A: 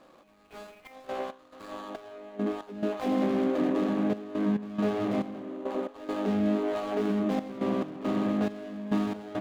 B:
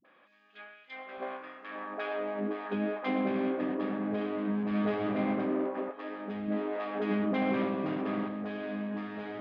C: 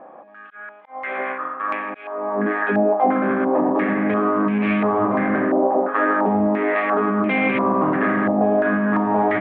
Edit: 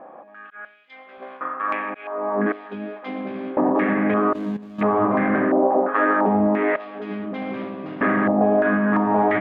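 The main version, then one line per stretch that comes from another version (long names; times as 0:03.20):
C
0:00.65–0:01.41: punch in from B
0:02.52–0:03.57: punch in from B
0:04.33–0:04.81: punch in from A
0:06.76–0:08.01: punch in from B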